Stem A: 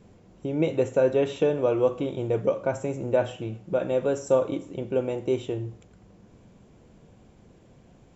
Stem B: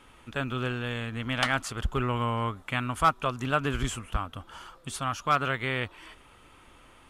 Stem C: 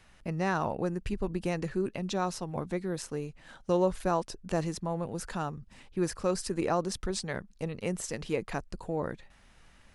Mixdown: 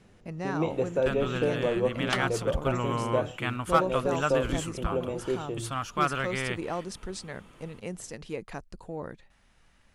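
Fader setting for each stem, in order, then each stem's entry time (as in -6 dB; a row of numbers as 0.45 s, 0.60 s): -5.0 dB, -2.0 dB, -4.5 dB; 0.00 s, 0.70 s, 0.00 s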